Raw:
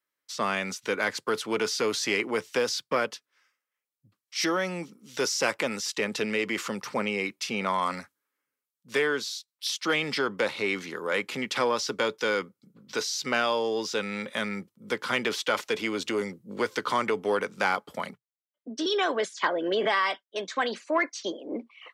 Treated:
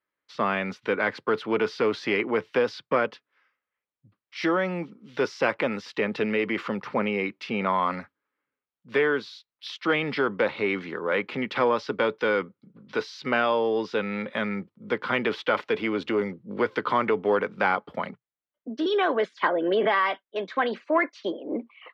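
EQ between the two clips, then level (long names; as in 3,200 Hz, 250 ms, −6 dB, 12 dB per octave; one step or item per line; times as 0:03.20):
high-frequency loss of the air 370 metres
+4.5 dB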